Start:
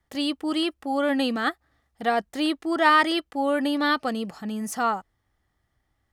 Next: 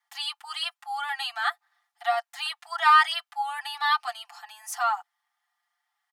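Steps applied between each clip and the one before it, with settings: Chebyshev high-pass 720 Hz, order 8; comb 5.8 ms, depth 93%; trim -2.5 dB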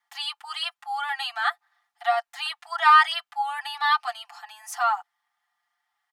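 treble shelf 4.9 kHz -5.5 dB; trim +2.5 dB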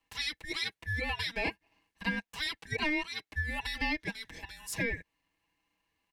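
ring modulator 910 Hz; compression 6:1, threshold -30 dBFS, peak gain reduction 16 dB; trim +1 dB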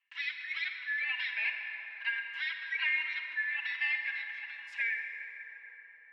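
Butterworth band-pass 2.1 kHz, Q 1.5; reverberation RT60 4.9 s, pre-delay 38 ms, DRR 3 dB; trim +2.5 dB

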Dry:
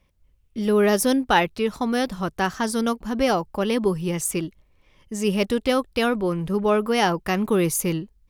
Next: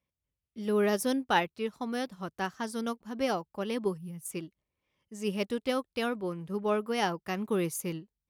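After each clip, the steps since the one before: high-pass 88 Hz 12 dB/octave; time-frequency box 3.98–4.25 s, 260–9000 Hz -15 dB; upward expansion 1.5:1, over -37 dBFS; trim -7 dB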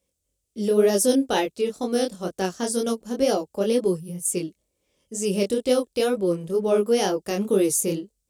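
graphic EQ 125/500/1000/2000/8000 Hz -7/+7/-9/-7/+11 dB; in parallel at +2 dB: peak limiter -27 dBFS, peak gain reduction 11.5 dB; on the sum: chorus 2.1 Hz, delay 20 ms, depth 5.6 ms; trim +6 dB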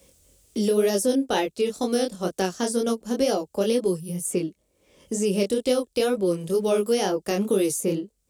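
three bands compressed up and down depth 70%; trim -1 dB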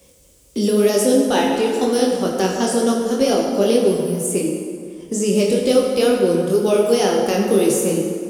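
plate-style reverb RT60 2.3 s, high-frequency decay 0.6×, DRR 0 dB; trim +4 dB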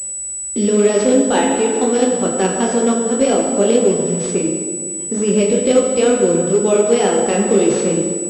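class-D stage that switches slowly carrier 7.9 kHz; trim +2 dB

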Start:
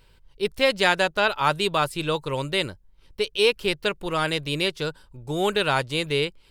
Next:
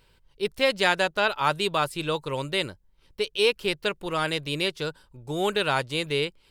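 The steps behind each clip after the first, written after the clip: bass shelf 77 Hz -6 dB; trim -2 dB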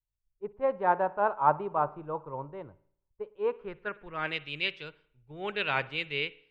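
spring tank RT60 1 s, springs 54 ms, chirp 45 ms, DRR 16.5 dB; low-pass sweep 950 Hz -> 2.4 kHz, 3.33–4.34 s; three bands expanded up and down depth 100%; trim -8.5 dB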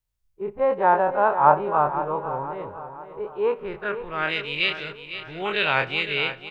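every event in the spectrogram widened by 60 ms; on a send: feedback delay 506 ms, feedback 46%, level -11.5 dB; on the sum: trim +4 dB

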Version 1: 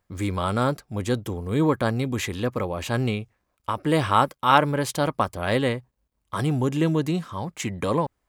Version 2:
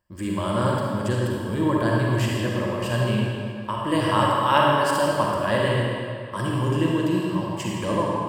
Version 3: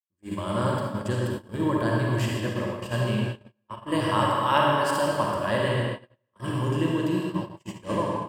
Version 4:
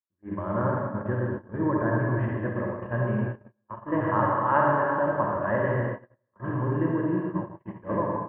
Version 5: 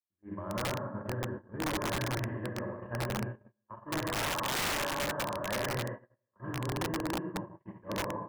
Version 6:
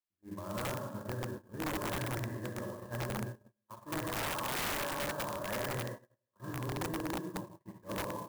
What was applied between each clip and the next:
rippled EQ curve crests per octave 1.3, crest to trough 10 dB; reverberation RT60 2.5 s, pre-delay 39 ms, DRR -3.5 dB; trim -4.5 dB
gate -25 dBFS, range -40 dB; trim -3 dB
Chebyshev low-pass 1.8 kHz, order 4
integer overflow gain 18.5 dB; trim -8 dB
sampling jitter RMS 0.041 ms; trim -3 dB

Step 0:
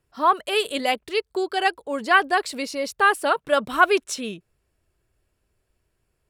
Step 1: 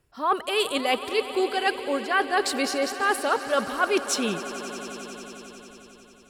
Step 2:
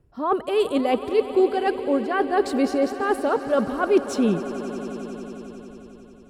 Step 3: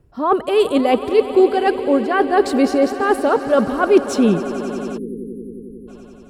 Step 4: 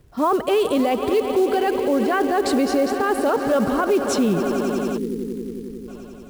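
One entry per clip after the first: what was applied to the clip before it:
reverse; compression, threshold -25 dBFS, peak gain reduction 14.5 dB; reverse; echo with a slow build-up 90 ms, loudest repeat 5, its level -17.5 dB; trim +4.5 dB
tilt shelf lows +10 dB, about 890 Hz
spectral selection erased 4.98–5.88 s, 530–9400 Hz; trim +6 dB
peak limiter -13.5 dBFS, peak gain reduction 11.5 dB; companded quantiser 6-bit; trim +2 dB

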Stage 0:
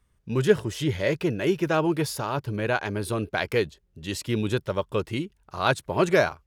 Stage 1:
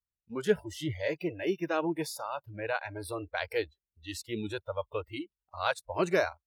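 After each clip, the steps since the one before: spectral noise reduction 25 dB; trim -6.5 dB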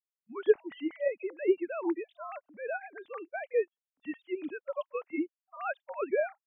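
formants replaced by sine waves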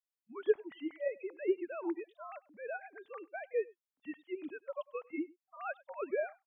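delay 98 ms -23.5 dB; trim -5.5 dB

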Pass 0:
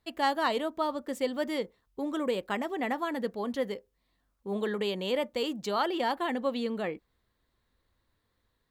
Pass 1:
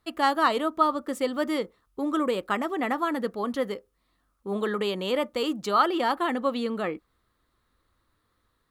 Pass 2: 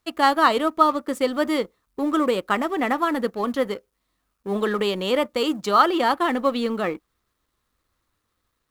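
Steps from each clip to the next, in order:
graphic EQ with 31 bands 315 Hz +4 dB, 1.25 kHz +11 dB, 10 kHz +5 dB; trim +2.5 dB
companding laws mixed up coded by A; trim +5.5 dB

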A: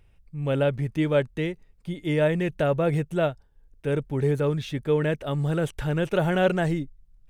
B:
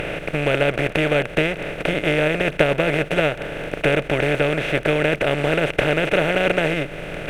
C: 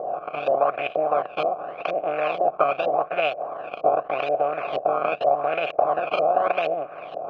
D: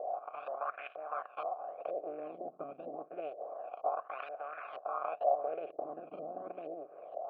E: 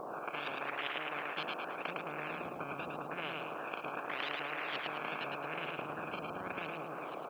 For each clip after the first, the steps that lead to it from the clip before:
spectral levelling over time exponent 0.2; peaking EQ 2.4 kHz +12 dB 0.76 oct; transient shaper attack +6 dB, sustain -4 dB; trim -5 dB
decimation with a swept rate 16×, swing 100% 0.85 Hz; LFO low-pass saw up 2.1 Hz 530–3900 Hz; vowel filter a; trim +5 dB
LFO band-pass sine 0.28 Hz 240–1500 Hz; trim -8 dB
feedback delay 108 ms, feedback 39%, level -5 dB; spectrum-flattening compressor 10:1; trim +7 dB

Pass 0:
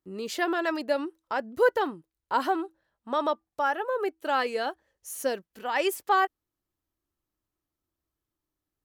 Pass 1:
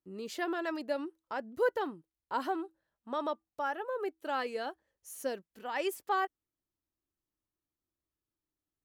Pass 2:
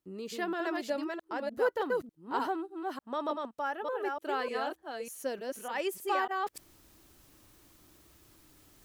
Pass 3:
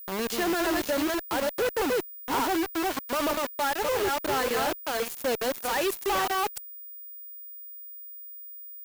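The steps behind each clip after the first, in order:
peaking EQ 230 Hz +3 dB 2.2 oct; trim -8.5 dB
chunks repeated in reverse 299 ms, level -3 dB; reverse; upward compressor, threshold -36 dBFS; reverse
companded quantiser 2-bit; Chebyshev shaper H 5 -16 dB, 6 -25 dB, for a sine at -24.5 dBFS; whistle 15 kHz -40 dBFS

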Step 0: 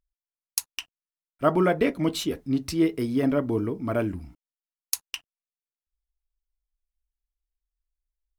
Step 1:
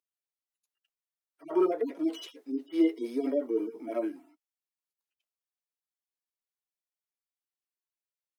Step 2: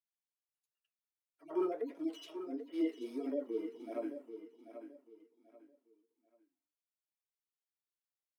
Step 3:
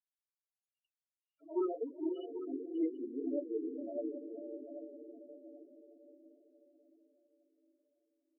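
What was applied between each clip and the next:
harmonic-percussive separation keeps harmonic; steep high-pass 310 Hz 36 dB/octave
flange 1.5 Hz, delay 6.8 ms, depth 9.1 ms, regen -65%; on a send: feedback delay 787 ms, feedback 28%, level -10.5 dB; on the sum: trim -4.5 dB
echo that smears into a reverb 519 ms, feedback 50%, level -6 dB; loudest bins only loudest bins 8

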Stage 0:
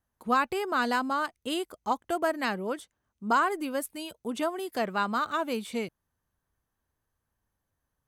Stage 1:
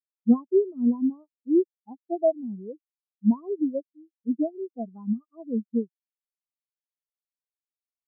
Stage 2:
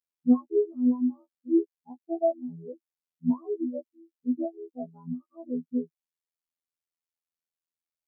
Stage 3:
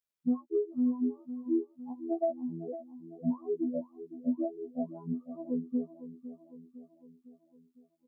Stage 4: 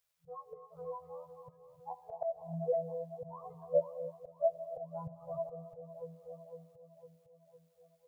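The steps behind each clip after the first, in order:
low-pass that closes with the level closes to 960 Hz, closed at -25.5 dBFS; tilt shelf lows +6 dB, about 760 Hz; spectral contrast expander 4:1; trim +7.5 dB
robot voice 83 Hz
compression 4:1, threshold -27 dBFS, peak gain reduction 11 dB; feedback delay 506 ms, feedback 55%, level -13.5 dB
slow attack 230 ms; gated-style reverb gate 330 ms rising, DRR 10 dB; FFT band-reject 170–440 Hz; trim +9 dB

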